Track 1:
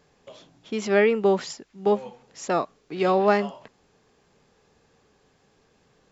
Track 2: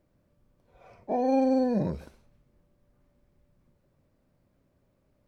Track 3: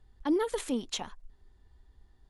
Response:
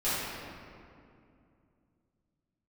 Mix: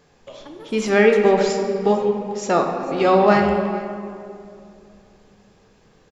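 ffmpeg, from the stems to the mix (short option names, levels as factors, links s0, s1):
-filter_complex "[0:a]volume=1.41,asplit=3[s0][s1][s2];[s1]volume=0.266[s3];[s2]volume=0.126[s4];[1:a]asubboost=boost=8.5:cutoff=110,adelay=1550,volume=0.501[s5];[2:a]acompressor=threshold=0.0251:ratio=6,adelay=200,volume=0.422,asplit=2[s6][s7];[s7]volume=0.237[s8];[3:a]atrim=start_sample=2205[s9];[s3][s8]amix=inputs=2:normalize=0[s10];[s10][s9]afir=irnorm=-1:irlink=0[s11];[s4]aecho=0:1:446:1[s12];[s0][s5][s6][s11][s12]amix=inputs=5:normalize=0"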